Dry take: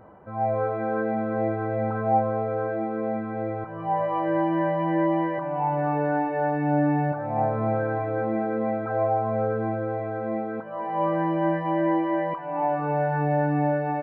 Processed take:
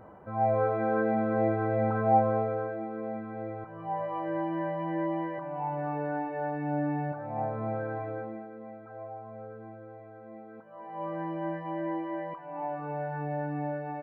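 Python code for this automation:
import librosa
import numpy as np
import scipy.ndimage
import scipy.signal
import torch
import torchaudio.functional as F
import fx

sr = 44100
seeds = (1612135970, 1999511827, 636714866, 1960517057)

y = fx.gain(x, sr, db=fx.line((2.37, -1.0), (2.77, -8.0), (8.1, -8.0), (8.51, -18.5), (10.32, -18.5), (11.21, -10.0)))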